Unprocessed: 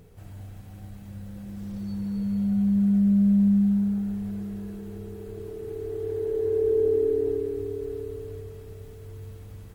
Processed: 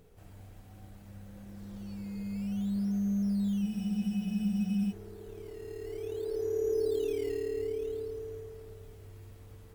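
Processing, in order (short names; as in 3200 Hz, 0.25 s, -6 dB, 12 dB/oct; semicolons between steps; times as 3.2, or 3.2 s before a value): in parallel at -11.5 dB: decimation with a swept rate 13×, swing 100% 0.57 Hz; on the sum: bell 120 Hz -7.5 dB 1.8 oct; digital reverb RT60 3.1 s, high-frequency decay 0.45×, pre-delay 45 ms, DRR 9 dB; spectral freeze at 3.64, 1.28 s; gain -6 dB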